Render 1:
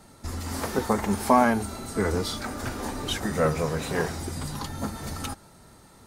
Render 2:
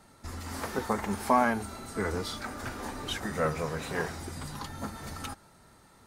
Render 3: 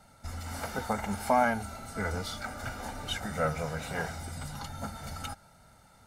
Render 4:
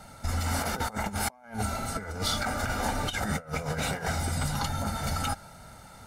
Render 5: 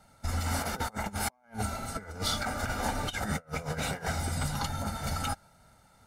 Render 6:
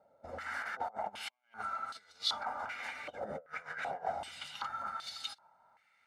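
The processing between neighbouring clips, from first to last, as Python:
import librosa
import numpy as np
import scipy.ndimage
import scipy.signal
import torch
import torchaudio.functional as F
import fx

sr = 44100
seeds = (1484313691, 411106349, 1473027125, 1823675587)

y1 = fx.peak_eq(x, sr, hz=1600.0, db=4.5, octaves=2.1)
y1 = F.gain(torch.from_numpy(y1), -7.0).numpy()
y2 = y1 + 0.61 * np.pad(y1, (int(1.4 * sr / 1000.0), 0))[:len(y1)]
y2 = F.gain(torch.from_numpy(y2), -2.0).numpy()
y3 = fx.over_compress(y2, sr, threshold_db=-37.0, ratio=-0.5)
y3 = F.gain(torch.from_numpy(y3), 6.5).numpy()
y4 = fx.upward_expand(y3, sr, threshold_db=-49.0, expansion=1.5)
y4 = F.gain(torch.from_numpy(y4), -1.0).numpy()
y5 = fx.filter_held_bandpass(y4, sr, hz=2.6, low_hz=550.0, high_hz=3900.0)
y5 = F.gain(torch.from_numpy(y5), 4.0).numpy()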